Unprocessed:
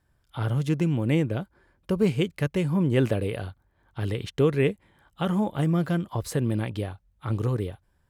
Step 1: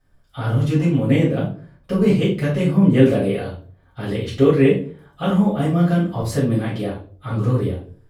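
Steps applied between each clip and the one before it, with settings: reverberation RT60 0.45 s, pre-delay 4 ms, DRR -8.5 dB; trim -6 dB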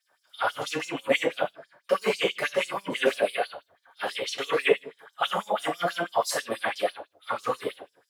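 LFO high-pass sine 6.1 Hz 620–6000 Hz; trim +1.5 dB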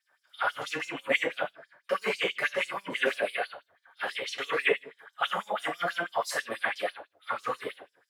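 peaking EQ 1.8 kHz +8.5 dB 1.3 oct; trim -6.5 dB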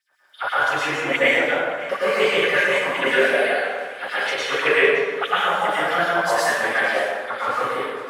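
feedback echo behind a high-pass 564 ms, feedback 55%, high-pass 1.7 kHz, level -16 dB; plate-style reverb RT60 1.6 s, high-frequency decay 0.5×, pre-delay 90 ms, DRR -8.5 dB; trim +2 dB

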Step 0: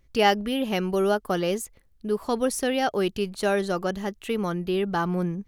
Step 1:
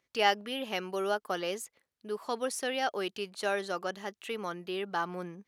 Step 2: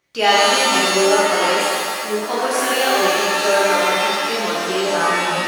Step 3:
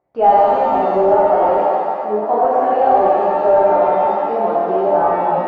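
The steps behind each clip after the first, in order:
frequency weighting A; trim -5 dB
pitch-shifted reverb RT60 1.8 s, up +7 st, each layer -2 dB, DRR -7.5 dB; trim +5.5 dB
overload inside the chain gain 13 dB; resonant low-pass 750 Hz, resonance Q 3.6

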